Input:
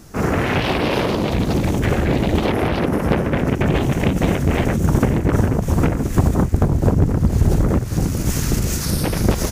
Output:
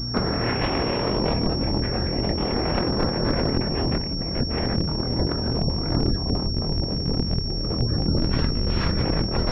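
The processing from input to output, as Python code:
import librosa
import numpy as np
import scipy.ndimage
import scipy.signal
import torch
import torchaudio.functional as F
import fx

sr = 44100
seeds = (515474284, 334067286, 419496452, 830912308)

p1 = fx.peak_eq(x, sr, hz=92.0, db=-4.0, octaves=1.8)
p2 = fx.spec_gate(p1, sr, threshold_db=-25, keep='strong')
p3 = fx.add_hum(p2, sr, base_hz=60, snr_db=12)
p4 = fx.doubler(p3, sr, ms=25.0, db=-4)
p5 = fx.schmitt(p4, sr, flips_db=-15.0)
p6 = p4 + F.gain(torch.from_numpy(p5), -7.0).numpy()
p7 = fx.low_shelf(p6, sr, hz=220.0, db=6.5, at=(3.99, 4.49))
p8 = fx.over_compress(p7, sr, threshold_db=-21.0, ratio=-1.0)
p9 = fx.pwm(p8, sr, carrier_hz=5500.0)
y = F.gain(torch.from_numpy(p9), -3.0).numpy()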